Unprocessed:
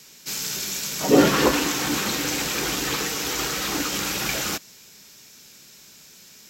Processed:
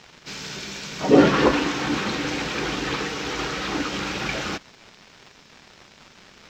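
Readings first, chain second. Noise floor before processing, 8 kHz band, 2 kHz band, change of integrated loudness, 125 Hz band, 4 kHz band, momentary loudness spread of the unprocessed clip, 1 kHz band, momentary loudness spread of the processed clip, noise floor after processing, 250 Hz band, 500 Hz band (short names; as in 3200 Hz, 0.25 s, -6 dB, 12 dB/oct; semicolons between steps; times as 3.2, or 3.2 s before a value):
-49 dBFS, -11.5 dB, 0.0 dB, -0.5 dB, +2.0 dB, -3.5 dB, 9 LU, +1.0 dB, 16 LU, -52 dBFS, +1.5 dB, +1.5 dB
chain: crackle 370/s -31 dBFS; air absorption 180 m; gain +2 dB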